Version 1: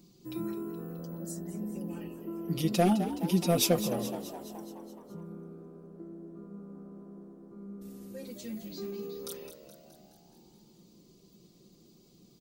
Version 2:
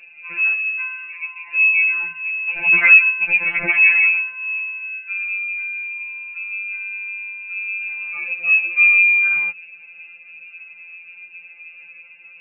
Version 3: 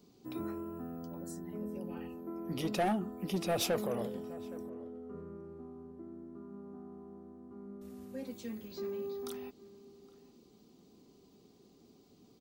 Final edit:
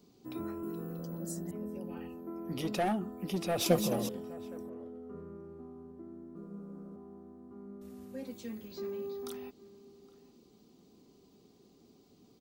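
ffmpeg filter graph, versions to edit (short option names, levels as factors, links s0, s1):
-filter_complex "[0:a]asplit=3[s0][s1][s2];[2:a]asplit=4[s3][s4][s5][s6];[s3]atrim=end=0.632[s7];[s0]atrim=start=0.628:end=1.512[s8];[s4]atrim=start=1.508:end=3.662[s9];[s1]atrim=start=3.658:end=4.092[s10];[s5]atrim=start=4.088:end=6.362[s11];[s2]atrim=start=6.358:end=6.962[s12];[s6]atrim=start=6.958[s13];[s7][s8]acrossfade=d=0.004:c1=hsin:c2=hsin[s14];[s14][s9]acrossfade=d=0.004:c1=hsin:c2=hsin[s15];[s15][s10]acrossfade=d=0.004:c1=hsin:c2=hsin[s16];[s16][s11]acrossfade=d=0.004:c1=hsin:c2=hsin[s17];[s17][s12]acrossfade=d=0.004:c1=hsin:c2=hsin[s18];[s18][s13]acrossfade=d=0.004:c1=hsin:c2=hsin"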